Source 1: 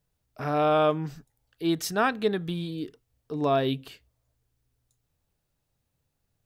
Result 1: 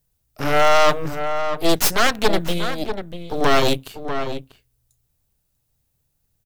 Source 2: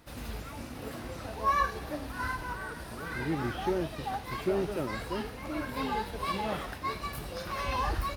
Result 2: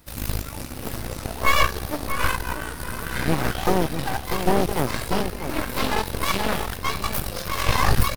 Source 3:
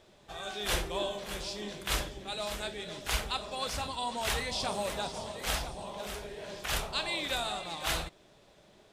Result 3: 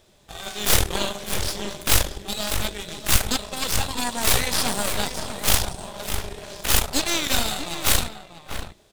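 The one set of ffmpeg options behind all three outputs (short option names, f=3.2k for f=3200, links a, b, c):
-filter_complex "[0:a]lowshelf=f=130:g=8,asplit=2[a][b];[b]aeval=exprs='sgn(val(0))*max(abs(val(0))-0.00631,0)':c=same,volume=-4dB[c];[a][c]amix=inputs=2:normalize=0,crystalizer=i=2:c=0,aeval=exprs='0.631*(cos(1*acos(clip(val(0)/0.631,-1,1)))-cos(1*PI/2))+0.2*(cos(3*acos(clip(val(0)/0.631,-1,1)))-cos(3*PI/2))+0.0562*(cos(5*acos(clip(val(0)/0.631,-1,1)))-cos(5*PI/2))+0.112*(cos(8*acos(clip(val(0)/0.631,-1,1)))-cos(8*PI/2))':c=same,asplit=2[d][e];[e]adelay=641.4,volume=-9dB,highshelf=f=4k:g=-14.4[f];[d][f]amix=inputs=2:normalize=0,asoftclip=type=tanh:threshold=-8dB,volume=5.5dB"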